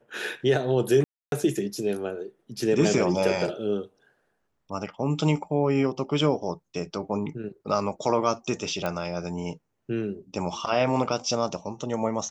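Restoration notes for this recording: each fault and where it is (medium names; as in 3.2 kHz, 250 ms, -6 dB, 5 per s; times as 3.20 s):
1.04–1.32 s: dropout 282 ms
8.86 s: pop -15 dBFS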